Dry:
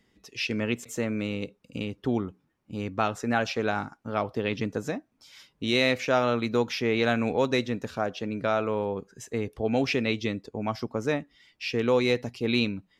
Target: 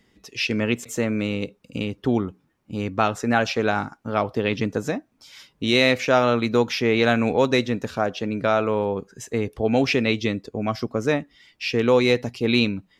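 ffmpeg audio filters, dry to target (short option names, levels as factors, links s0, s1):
-filter_complex "[0:a]asettb=1/sr,asplit=3[s0][s1][s2];[s0]atrim=end=10.454[s3];[s1]atrim=start=10.45:end=11.08,asetpts=PTS-STARTPTS,afade=t=in:d=0.004:c=qsin,afade=t=out:st=0.626:d=0.004:c=qsin,bandreject=f=890:w=5.3[s4];[s2]atrim=start=11.076[s5];[s3][s4]acrossfade=d=0.004:c1=hsin:c2=qsin[s6];[s6][s5]acrossfade=d=0.004:c1=qsin:c2=hsin,volume=1.88"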